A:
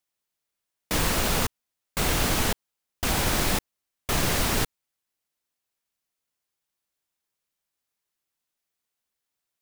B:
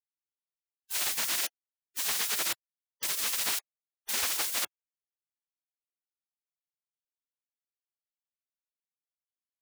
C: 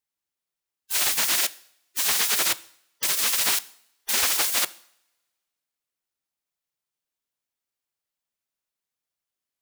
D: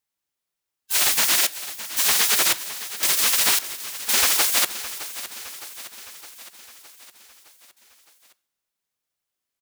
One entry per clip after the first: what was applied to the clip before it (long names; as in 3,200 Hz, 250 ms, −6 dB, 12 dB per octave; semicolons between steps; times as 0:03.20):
gate on every frequency bin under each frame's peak −20 dB weak
coupled-rooms reverb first 0.59 s, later 1.8 s, from −25 dB, DRR 16.5 dB; level +7.5 dB
repeating echo 613 ms, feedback 59%, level −14 dB; level +3.5 dB